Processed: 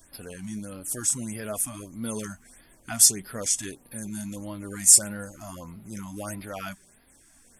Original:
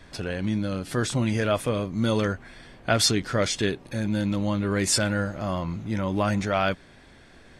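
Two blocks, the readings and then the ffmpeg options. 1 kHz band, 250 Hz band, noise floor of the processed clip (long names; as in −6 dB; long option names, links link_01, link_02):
−12.0 dB, −9.5 dB, −58 dBFS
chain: -af "flanger=delay=2.9:depth=2.5:regen=48:speed=1.1:shape=triangular,aexciter=amount=15.9:drive=4.5:freq=6100,afftfilt=real='re*(1-between(b*sr/1024,400*pow(7400/400,0.5+0.5*sin(2*PI*1.6*pts/sr))/1.41,400*pow(7400/400,0.5+0.5*sin(2*PI*1.6*pts/sr))*1.41))':imag='im*(1-between(b*sr/1024,400*pow(7400/400,0.5+0.5*sin(2*PI*1.6*pts/sr))/1.41,400*pow(7400/400,0.5+0.5*sin(2*PI*1.6*pts/sr))*1.41))':win_size=1024:overlap=0.75,volume=-6.5dB"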